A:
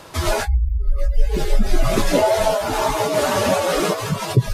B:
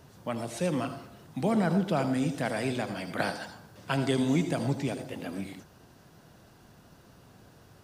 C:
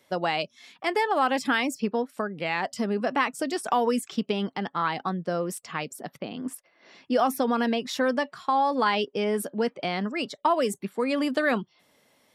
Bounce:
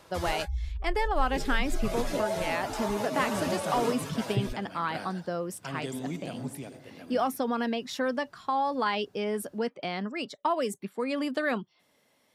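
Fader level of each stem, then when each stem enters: -14.0, -9.5, -4.5 dB; 0.00, 1.75, 0.00 s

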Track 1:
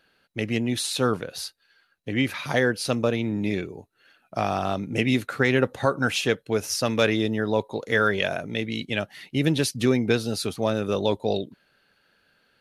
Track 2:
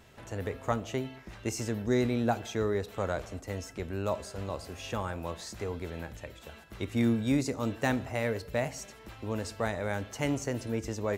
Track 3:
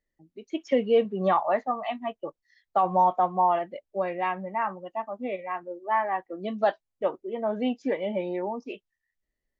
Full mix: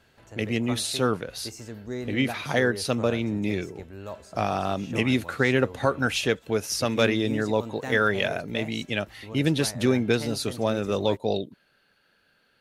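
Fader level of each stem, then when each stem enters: -1.0 dB, -6.5 dB, off; 0.00 s, 0.00 s, off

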